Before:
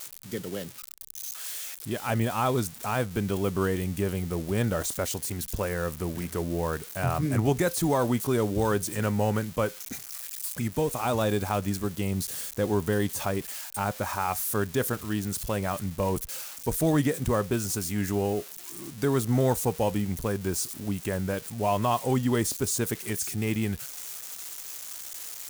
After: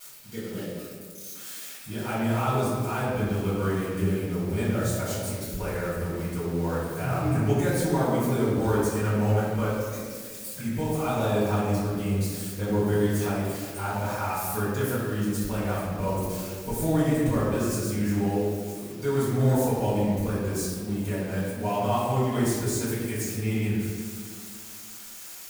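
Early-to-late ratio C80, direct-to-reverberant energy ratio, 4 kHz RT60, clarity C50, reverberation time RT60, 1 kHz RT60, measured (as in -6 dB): 0.5 dB, -13.0 dB, 1.0 s, -1.5 dB, 1.9 s, 1.6 s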